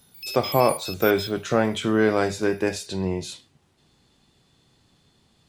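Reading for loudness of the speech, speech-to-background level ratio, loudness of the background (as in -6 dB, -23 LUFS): -23.5 LUFS, 9.5 dB, -33.0 LUFS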